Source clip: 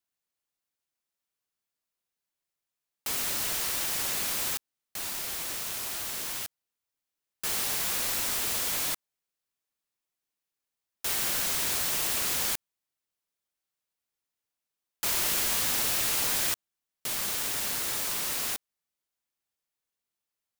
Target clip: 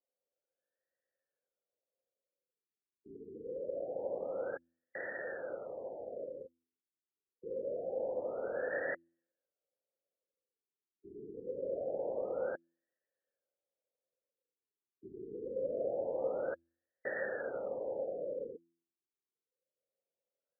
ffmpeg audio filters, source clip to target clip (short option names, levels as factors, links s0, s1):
-filter_complex "[0:a]asplit=3[s0][s1][s2];[s0]bandpass=f=530:t=q:w=8,volume=1[s3];[s1]bandpass=f=1840:t=q:w=8,volume=0.501[s4];[s2]bandpass=f=2480:t=q:w=8,volume=0.355[s5];[s3][s4][s5]amix=inputs=3:normalize=0,bandreject=f=84.08:t=h:w=4,bandreject=f=168.16:t=h:w=4,bandreject=f=252.24:t=h:w=4,bandreject=f=336.32:t=h:w=4,afftfilt=real='re*lt(b*sr/1024,420*pow(2000/420,0.5+0.5*sin(2*PI*0.25*pts/sr)))':imag='im*lt(b*sr/1024,420*pow(2000/420,0.5+0.5*sin(2*PI*0.25*pts/sr)))':win_size=1024:overlap=0.75,volume=5.96"